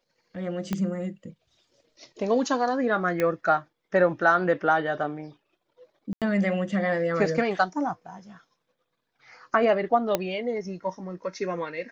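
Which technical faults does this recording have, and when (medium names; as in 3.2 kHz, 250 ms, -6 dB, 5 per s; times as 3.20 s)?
0.73 s: pop -14 dBFS
3.20 s: pop -13 dBFS
6.13–6.22 s: dropout 87 ms
10.15 s: pop -9 dBFS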